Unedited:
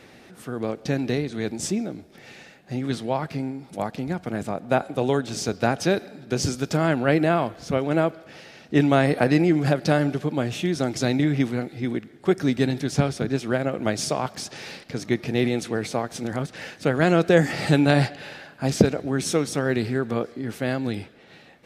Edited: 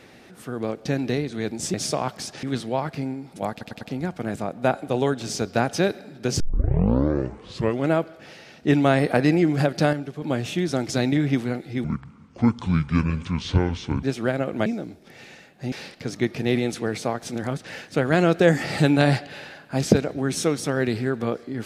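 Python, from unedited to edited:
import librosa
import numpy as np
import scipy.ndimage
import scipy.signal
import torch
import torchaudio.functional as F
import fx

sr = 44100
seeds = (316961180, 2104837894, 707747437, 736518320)

y = fx.edit(x, sr, fx.swap(start_s=1.74, length_s=1.06, other_s=13.92, other_length_s=0.69),
    fx.stutter(start_s=3.88, slice_s=0.1, count=4),
    fx.tape_start(start_s=6.47, length_s=1.51),
    fx.clip_gain(start_s=10.0, length_s=0.29, db=-7.5),
    fx.speed_span(start_s=11.91, length_s=1.38, speed=0.63), tone=tone)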